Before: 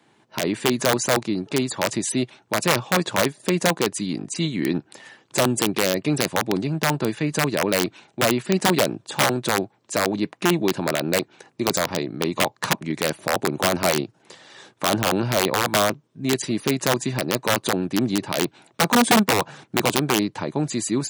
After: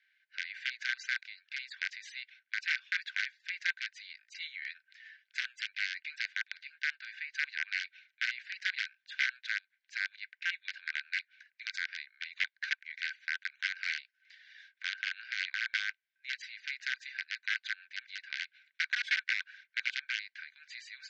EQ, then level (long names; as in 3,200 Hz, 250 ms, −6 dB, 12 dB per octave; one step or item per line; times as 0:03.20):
Gaussian smoothing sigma 2.4 samples
Chebyshev high-pass with heavy ripple 1,500 Hz, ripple 6 dB
high-frequency loss of the air 51 metres
0.0 dB